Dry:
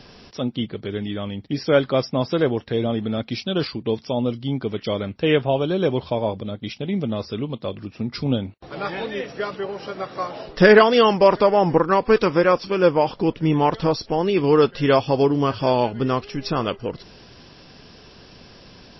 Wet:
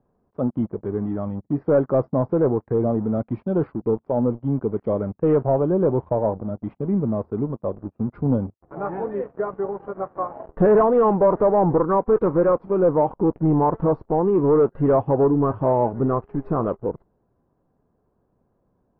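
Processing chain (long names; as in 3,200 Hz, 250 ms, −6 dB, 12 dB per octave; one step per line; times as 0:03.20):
noise reduction from a noise print of the clip's start 6 dB
leveller curve on the samples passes 3
low-pass filter 1,100 Hz 24 dB per octave
level −8.5 dB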